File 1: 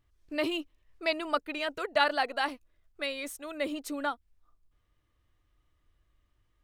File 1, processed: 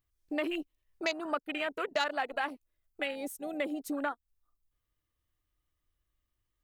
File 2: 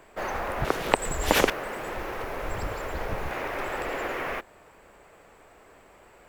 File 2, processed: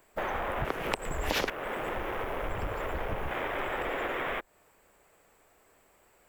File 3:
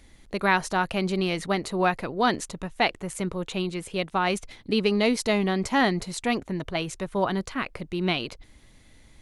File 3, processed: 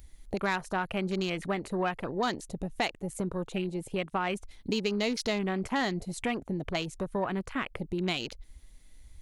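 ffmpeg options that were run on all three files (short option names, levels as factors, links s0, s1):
-af "afwtdn=0.0158,acontrast=86,aemphasis=mode=production:type=50kf,acompressor=threshold=0.0282:ratio=2.5,volume=0.794"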